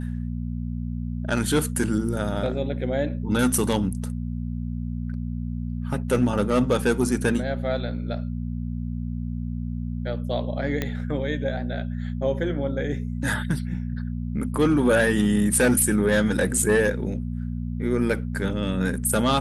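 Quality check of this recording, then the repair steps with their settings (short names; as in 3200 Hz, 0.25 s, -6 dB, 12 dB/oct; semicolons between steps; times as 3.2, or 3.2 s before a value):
hum 60 Hz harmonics 4 -29 dBFS
10.82 pop -12 dBFS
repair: de-click; de-hum 60 Hz, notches 4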